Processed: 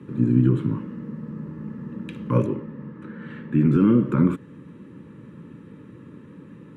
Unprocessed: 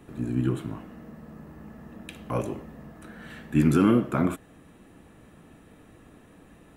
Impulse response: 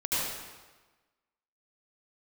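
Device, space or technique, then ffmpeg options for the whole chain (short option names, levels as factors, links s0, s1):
PA system with an anti-feedback notch: -filter_complex "[0:a]highpass=f=130:w=0.5412,highpass=f=130:w=1.3066,asuperstop=centerf=710:order=8:qfactor=2.6,alimiter=limit=0.119:level=0:latency=1:release=147,aemphasis=mode=reproduction:type=riaa,asettb=1/sr,asplit=3[s0][s1][s2];[s0]atrim=end=2.464[s3];[s1]atrim=start=2.46:end=3.76,asetpts=PTS-STARTPTS,afade=t=in:d=0.004:c=qsin,afade=t=out:st=1.296:d=0.004:c=qsin,bass=f=250:g=-4,treble=f=4000:g=-10[s4];[s2]atrim=start=3.756[s5];[s3][s4]acrossfade=d=0.004:c1=hsin:c2=qsin[s6];[s6][s5]acrossfade=d=0.004:c1=qsin:c2=hsin,volume=1.5"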